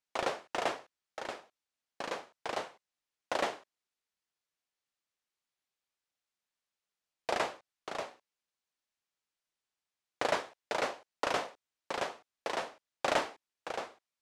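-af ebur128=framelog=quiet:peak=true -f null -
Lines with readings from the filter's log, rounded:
Integrated loudness:
  I:         -37.0 LUFS
  Threshold: -47.6 LUFS
Loudness range:
  LRA:         6.8 LU
  Threshold: -59.9 LUFS
  LRA low:   -43.3 LUFS
  LRA high:  -36.5 LUFS
True peak:
  Peak:      -15.0 dBFS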